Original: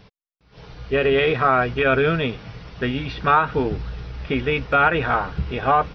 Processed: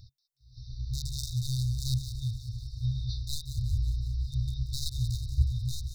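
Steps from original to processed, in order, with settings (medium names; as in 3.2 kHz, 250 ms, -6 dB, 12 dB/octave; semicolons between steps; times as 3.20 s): one-sided wavefolder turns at -14 dBFS; peaking EQ 1.9 kHz -9.5 dB 2 oct; FFT band-reject 130–3600 Hz; on a send: feedback echo behind a high-pass 183 ms, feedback 61%, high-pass 4 kHz, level -9.5 dB; on the sum: trim +2 dB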